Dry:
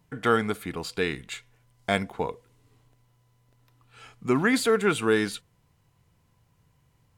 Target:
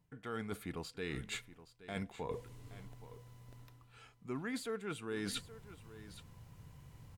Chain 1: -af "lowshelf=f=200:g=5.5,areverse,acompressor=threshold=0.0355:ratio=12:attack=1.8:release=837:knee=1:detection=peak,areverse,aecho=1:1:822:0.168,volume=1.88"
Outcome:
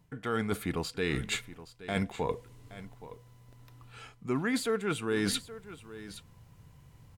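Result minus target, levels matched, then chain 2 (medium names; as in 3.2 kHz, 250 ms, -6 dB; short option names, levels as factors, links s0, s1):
compression: peak gain reduction -10 dB
-af "lowshelf=f=200:g=5.5,areverse,acompressor=threshold=0.01:ratio=12:attack=1.8:release=837:knee=1:detection=peak,areverse,aecho=1:1:822:0.168,volume=1.88"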